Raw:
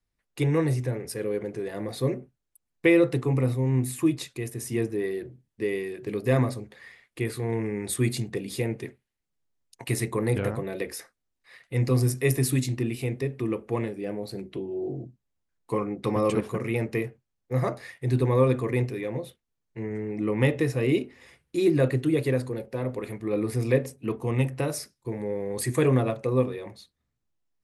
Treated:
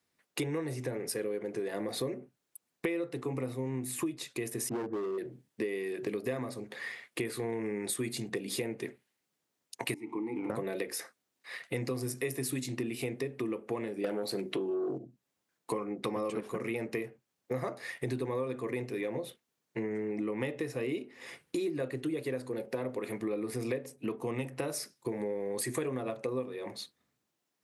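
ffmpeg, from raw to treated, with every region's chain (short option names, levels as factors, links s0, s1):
-filter_complex "[0:a]asettb=1/sr,asplit=3[s0][s1][s2];[s0]atrim=end=4.694[s3];[s1]atrim=start=4.69:end=5.18,asetpts=PTS-STARTPTS,afade=t=in:d=0.004:c=qsin,afade=t=out:st=0.486:d=0.004:c=qsin,lowpass=f=1300:w=0.5412,lowpass=f=1300:w=1.3066,asoftclip=type=hard:threshold=0.0355[s4];[s2]atrim=start=5.176[s5];[s3][s4]acrossfade=d=0.004:c1=hsin:c2=qsin[s6];[s6][s5]acrossfade=d=0.004:c1=qsin:c2=hsin,asettb=1/sr,asplit=3[s7][s8][s9];[s7]atrim=end=9.944[s10];[s8]atrim=start=9.94:end=10.5,asetpts=PTS-STARTPTS,afade=t=in:d=0.004:c=qsin,afade=t=out:st=0.556:d=0.004:c=qsin,aeval=exprs='val(0)+0.5*0.0126*sgn(val(0))':c=same,asplit=3[s11][s12][s13];[s11]bandpass=f=300:t=q:w=8,volume=1[s14];[s12]bandpass=f=870:t=q:w=8,volume=0.501[s15];[s13]bandpass=f=2240:t=q:w=8,volume=0.355[s16];[s14][s15][s16]amix=inputs=3:normalize=0,equalizer=f=3800:t=o:w=1.1:g=-8.5[s17];[s9]atrim=start=10.496[s18];[s10][s17]acrossfade=d=0.004:c1=hsin:c2=qsin[s19];[s19][s18]acrossfade=d=0.004:c1=qsin:c2=hsin,asettb=1/sr,asplit=3[s20][s21][s22];[s20]atrim=end=14.044[s23];[s21]atrim=start=14.04:end=14.98,asetpts=PTS-STARTPTS,afade=t=in:d=0.004:c=qsin,afade=t=out:st=0.936:d=0.004:c=qsin,lowshelf=f=220:g=-7.5,acontrast=41,aeval=exprs='0.15*sin(PI/2*1.58*val(0)/0.15)':c=same[s24];[s22]atrim=start=14.976[s25];[s23][s24]acrossfade=d=0.004:c1=hsin:c2=qsin[s26];[s26][s25]acrossfade=d=0.004:c1=qsin:c2=hsin,highpass=210,acompressor=threshold=0.01:ratio=8,volume=2.51"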